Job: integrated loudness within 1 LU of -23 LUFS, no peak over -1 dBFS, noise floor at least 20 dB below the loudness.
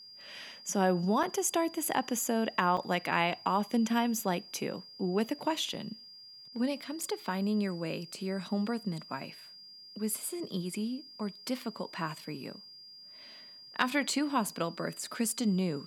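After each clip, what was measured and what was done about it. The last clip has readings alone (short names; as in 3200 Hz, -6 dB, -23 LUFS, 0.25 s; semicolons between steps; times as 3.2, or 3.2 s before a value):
dropouts 5; longest dropout 4.4 ms; steady tone 4800 Hz; tone level -49 dBFS; loudness -32.5 LUFS; peak -11.5 dBFS; loudness target -23.0 LUFS
-> interpolate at 1.23/2.77/5.74/7.03/14.49, 4.4 ms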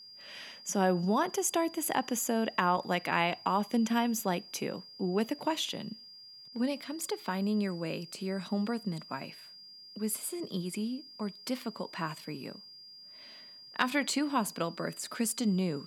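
dropouts 0; steady tone 4800 Hz; tone level -49 dBFS
-> notch 4800 Hz, Q 30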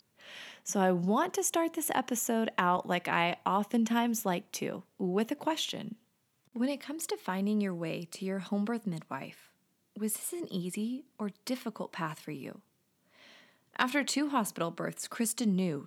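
steady tone none; loudness -32.5 LUFS; peak -11.5 dBFS; loudness target -23.0 LUFS
-> gain +9.5 dB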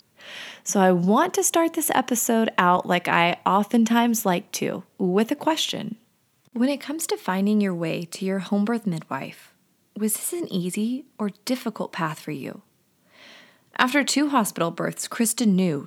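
loudness -23.0 LUFS; peak -2.0 dBFS; noise floor -65 dBFS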